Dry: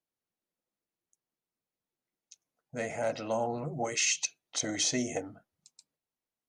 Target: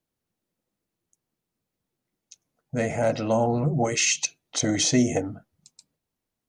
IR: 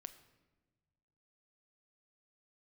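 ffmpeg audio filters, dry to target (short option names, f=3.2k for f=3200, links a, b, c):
-af "lowshelf=f=300:g=11.5,volume=5.5dB"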